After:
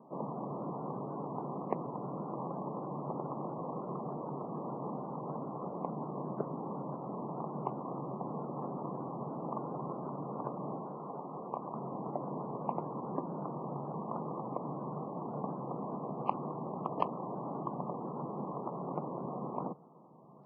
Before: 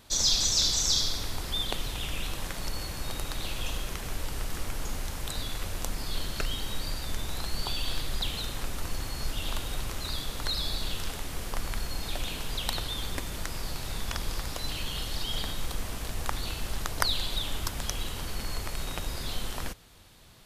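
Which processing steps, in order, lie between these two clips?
Chebyshev band-pass filter 140–1,100 Hz, order 5
0:10.81–0:11.74: low-shelf EQ 380 Hz −7 dB
soft clipping −17 dBFS, distortion −27 dB
level +4.5 dB
Ogg Vorbis 16 kbit/s 16,000 Hz

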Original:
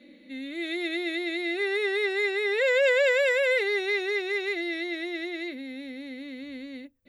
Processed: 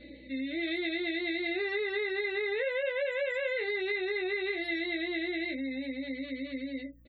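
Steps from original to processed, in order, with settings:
reversed playback
upward compression, threshold −44 dBFS
reversed playback
double-tracking delay 18 ms −13 dB
on a send: ambience of single reflections 19 ms −3.5 dB, 30 ms −8.5 dB
on the sum: gate on every frequency bin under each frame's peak −30 dB strong
parametric band 410 Hz +5 dB 1.1 octaves
mains hum 60 Hz, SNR 34 dB
downward compressor 12 to 1, threshold −28 dBFS, peak gain reduction 15.5 dB
parametric band 180 Hz −5 dB 1.6 octaves

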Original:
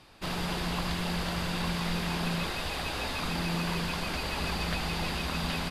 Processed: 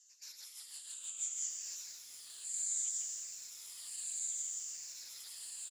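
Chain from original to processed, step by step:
rippled gain that drifts along the octave scale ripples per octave 0.72, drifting −0.64 Hz, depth 22 dB
gate on every frequency bin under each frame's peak −20 dB weak
speech leveller 2 s
brickwall limiter −34 dBFS, peak gain reduction 12 dB
rotating-speaker cabinet horn 6.3 Hz, later 0.75 Hz, at 0:01.08
resonant band-pass 7,200 Hz, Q 13
repeating echo 164 ms, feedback 48%, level −8 dB
feedback echo at a low word length 458 ms, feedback 55%, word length 11 bits, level −13 dB
level +17 dB

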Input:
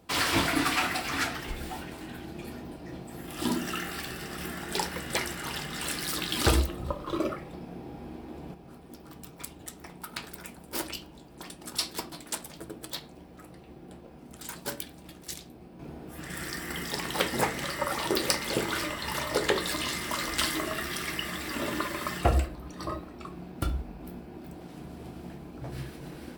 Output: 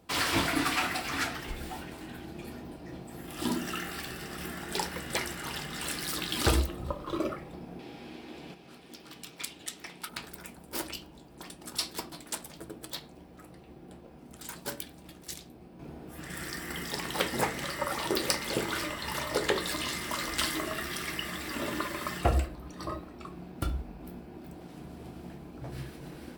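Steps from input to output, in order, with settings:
0:07.79–0:10.09: meter weighting curve D
level −2 dB

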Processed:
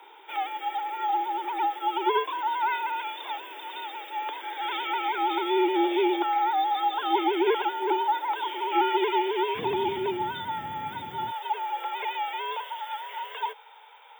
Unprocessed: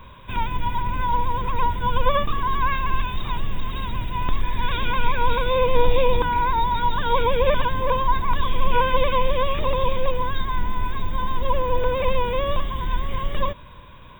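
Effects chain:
Butterworth high-pass 460 Hz 96 dB per octave, from 0:09.54 240 Hz, from 0:11.30 610 Hz
frequency shifter −140 Hz
level −2.5 dB

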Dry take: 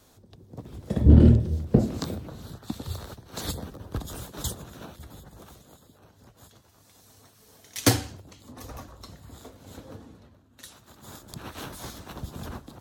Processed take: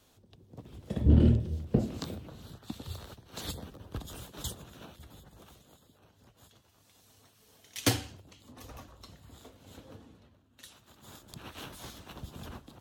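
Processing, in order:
parametric band 2,900 Hz +6.5 dB 0.65 octaves
level −7 dB

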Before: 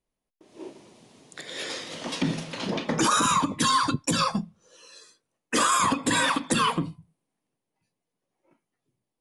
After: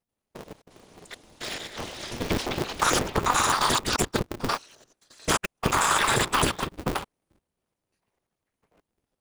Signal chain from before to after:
slices reordered back to front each 88 ms, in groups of 4
random phases in short frames
ring modulator with a square carrier 120 Hz

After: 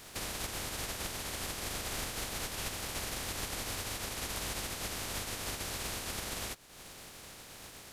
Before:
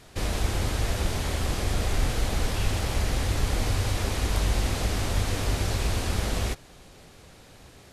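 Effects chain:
compressing power law on the bin magnitudes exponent 0.45
downward compressor 2.5 to 1, threshold −43 dBFS, peak gain reduction 16 dB

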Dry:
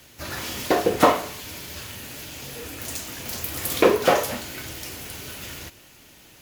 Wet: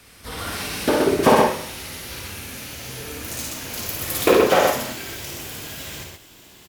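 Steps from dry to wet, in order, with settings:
gliding playback speed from 78% → 114%
loudspeakers that aren't time-aligned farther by 19 metres −3 dB, 43 metres −3 dB

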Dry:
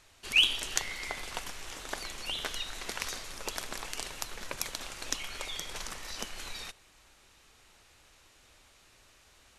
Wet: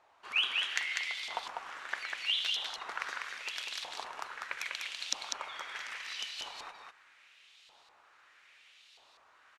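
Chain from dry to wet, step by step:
auto-filter band-pass saw up 0.78 Hz 770–4,100 Hz
on a send: single-tap delay 197 ms −3.5 dB
on the sum: level +6 dB

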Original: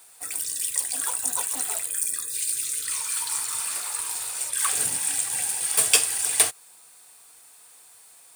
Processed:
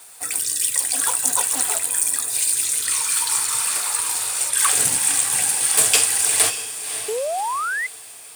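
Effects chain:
on a send: feedback delay with all-pass diffusion 569 ms, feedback 46%, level −13.5 dB
on the sum: sound drawn into the spectrogram rise, 0:07.08–0:07.87, 410–2,100 Hz −32 dBFS
boost into a limiter +9.5 dB
highs frequency-modulated by the lows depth 0.17 ms
level −1.5 dB

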